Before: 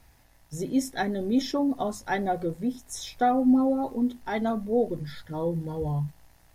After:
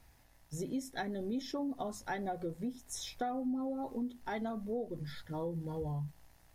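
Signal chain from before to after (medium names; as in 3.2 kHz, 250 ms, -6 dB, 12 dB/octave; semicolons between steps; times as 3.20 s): compression 4:1, threshold -30 dBFS, peak gain reduction 11.5 dB; trim -5 dB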